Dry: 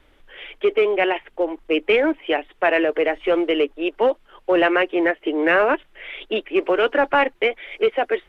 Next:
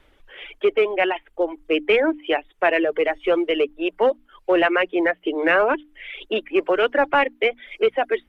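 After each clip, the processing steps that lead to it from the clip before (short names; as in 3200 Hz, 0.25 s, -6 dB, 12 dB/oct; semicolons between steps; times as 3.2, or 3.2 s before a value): reverb removal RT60 0.78 s; notches 60/120/180/240/300 Hz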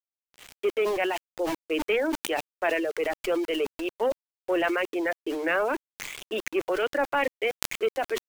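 sample gate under -32.5 dBFS; sustainer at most 33 dB/s; gain -8 dB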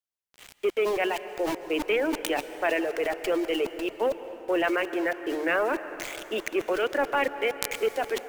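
plate-style reverb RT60 3.9 s, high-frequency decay 0.5×, pre-delay 0.12 s, DRR 11.5 dB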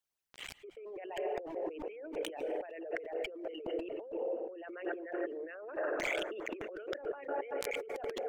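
formant sharpening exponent 2; negative-ratio compressor -37 dBFS, ratio -1; gain -4 dB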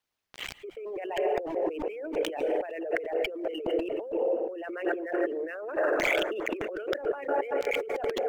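median filter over 5 samples; gain +9 dB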